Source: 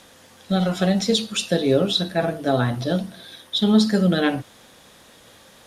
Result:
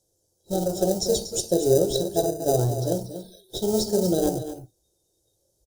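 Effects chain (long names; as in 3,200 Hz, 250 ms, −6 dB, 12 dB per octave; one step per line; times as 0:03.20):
single-tap delay 238 ms −10 dB
dynamic equaliser 740 Hz, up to +6 dB, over −34 dBFS, Q 1.3
in parallel at −6.5 dB: sample-rate reduction 1,100 Hz, jitter 0%
on the sum: drawn EQ curve 120 Hz 0 dB, 250 Hz −14 dB, 350 Hz +10 dB, 1,400 Hz −22 dB, 2,300 Hz −28 dB, 5,700 Hz +6 dB
noise reduction from a noise print of the clip's start 19 dB
comb filter 1.3 ms, depth 37%
level −4.5 dB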